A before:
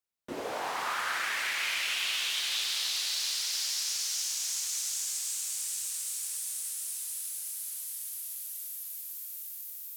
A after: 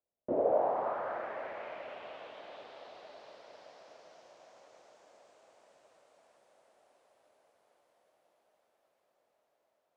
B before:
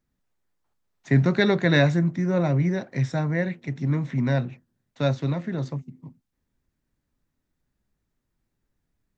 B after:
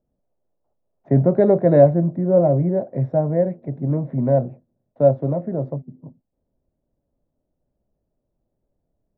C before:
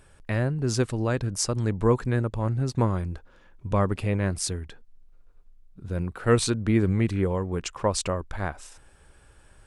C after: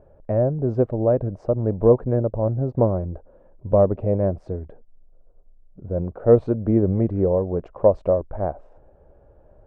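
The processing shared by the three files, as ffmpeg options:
-af "lowpass=f=610:t=q:w=3.8,volume=1.19"

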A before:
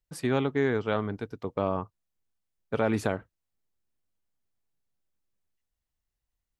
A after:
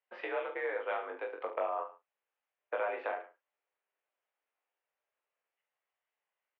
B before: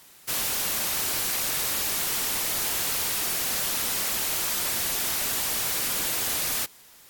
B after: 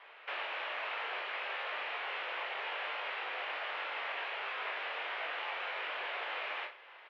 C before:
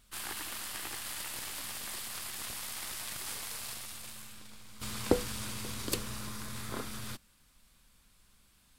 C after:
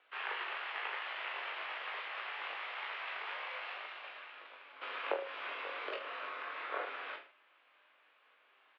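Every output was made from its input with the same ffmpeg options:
-filter_complex "[0:a]acompressor=threshold=0.02:ratio=6,asplit=2[s0][s1];[s1]adelay=35,volume=0.251[s2];[s0][s2]amix=inputs=2:normalize=0,aecho=1:1:20|44|72.8|107.4|148.8:0.631|0.398|0.251|0.158|0.1,highpass=f=430:t=q:w=0.5412,highpass=f=430:t=q:w=1.307,lowpass=f=2800:t=q:w=0.5176,lowpass=f=2800:t=q:w=0.7071,lowpass=f=2800:t=q:w=1.932,afreqshift=58,volume=1.58"

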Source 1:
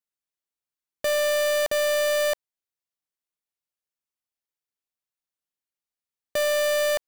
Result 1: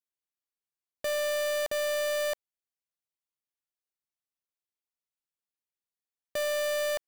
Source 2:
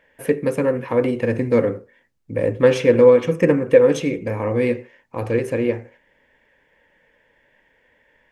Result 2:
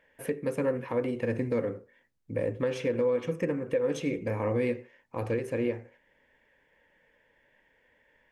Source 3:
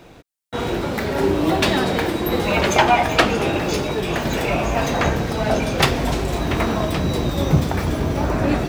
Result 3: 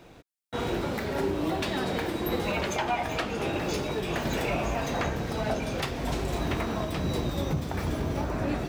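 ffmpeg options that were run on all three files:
-af "alimiter=limit=0.251:level=0:latency=1:release=408,volume=0.473"

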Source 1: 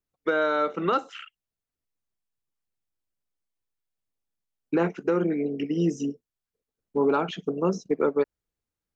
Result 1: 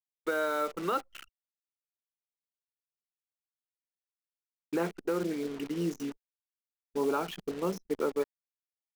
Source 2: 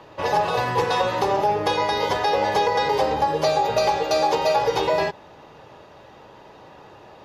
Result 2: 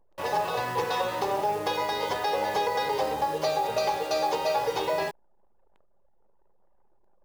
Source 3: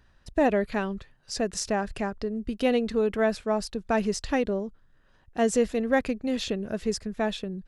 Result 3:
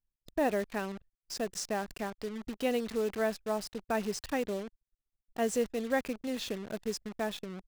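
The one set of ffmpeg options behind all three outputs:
-af "lowshelf=f=150:g=-7,acrusher=bits=7:dc=4:mix=0:aa=0.000001,anlmdn=0.251,volume=0.501"

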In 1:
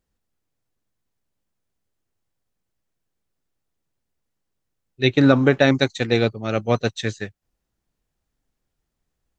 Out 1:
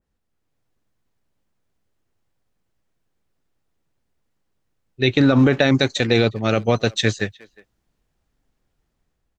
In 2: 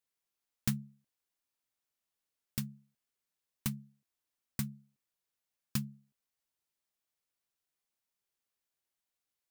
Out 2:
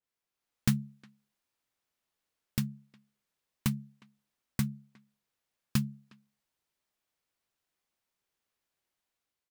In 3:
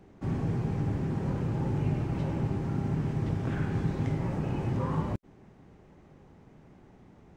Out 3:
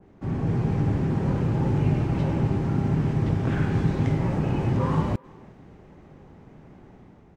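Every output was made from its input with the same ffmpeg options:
-filter_complex "[0:a]highshelf=f=4800:g=-7.5,alimiter=limit=0.237:level=0:latency=1:release=41,dynaudnorm=f=120:g=7:m=1.78,asplit=2[s0][s1];[s1]adelay=360,highpass=300,lowpass=3400,asoftclip=type=hard:threshold=0.141,volume=0.0708[s2];[s0][s2]amix=inputs=2:normalize=0,adynamicequalizer=threshold=0.00891:dfrequency=2400:dqfactor=0.7:tfrequency=2400:tqfactor=0.7:attack=5:release=100:ratio=0.375:range=3:mode=boostabove:tftype=highshelf,volume=1.19"

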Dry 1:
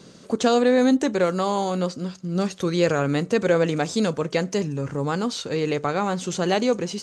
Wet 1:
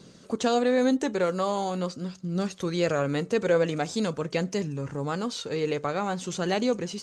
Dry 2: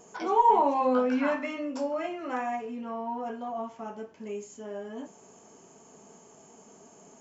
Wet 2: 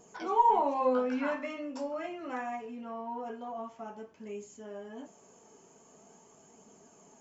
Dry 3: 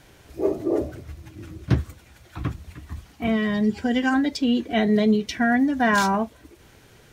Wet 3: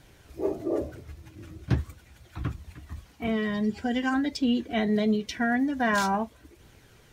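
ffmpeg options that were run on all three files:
-af "flanger=delay=0.2:depth=2.2:regen=74:speed=0.45:shape=triangular"

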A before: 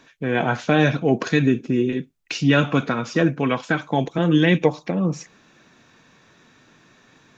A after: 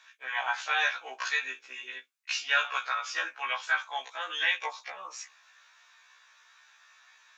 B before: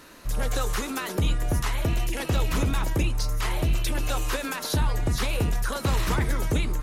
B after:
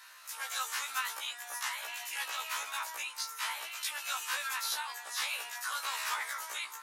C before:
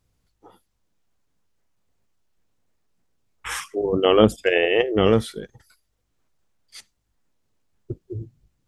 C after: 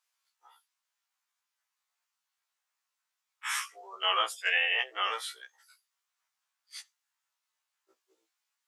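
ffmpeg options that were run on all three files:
-af "highpass=f=970:w=0.5412,highpass=f=970:w=1.3066,afftfilt=real='re*1.73*eq(mod(b,3),0)':imag='im*1.73*eq(mod(b,3),0)':win_size=2048:overlap=0.75"

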